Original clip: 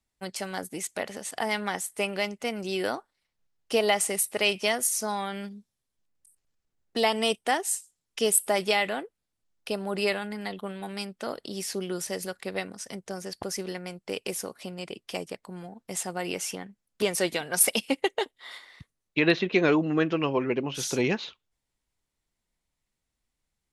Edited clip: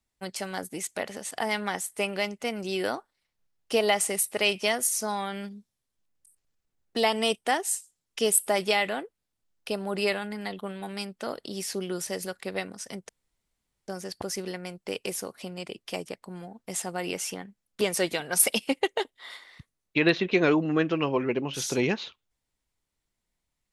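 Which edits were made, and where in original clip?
13.09 insert room tone 0.79 s

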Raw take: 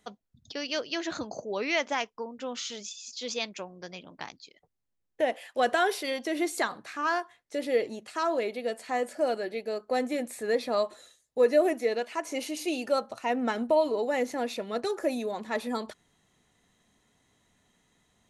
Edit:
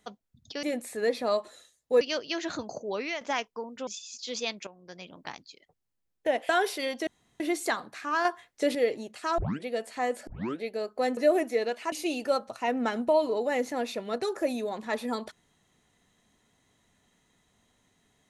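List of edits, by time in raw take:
1.55–1.83 fade out, to -11.5 dB
2.49–2.81 cut
3.61–4.06 fade in, from -12.5 dB
5.43–5.74 cut
6.32 insert room tone 0.33 s
7.17–7.67 gain +6 dB
8.3 tape start 0.27 s
9.19 tape start 0.34 s
10.09–11.47 move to 0.63
12.22–12.54 cut

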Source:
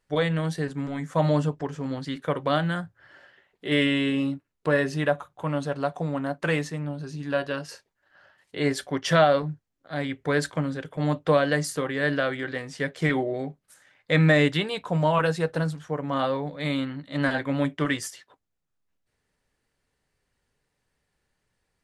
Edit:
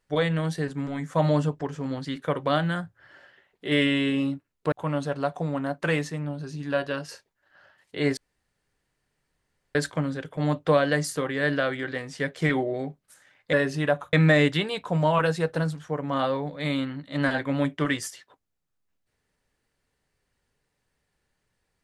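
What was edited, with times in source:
4.72–5.32 move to 14.13
8.77–10.35 room tone

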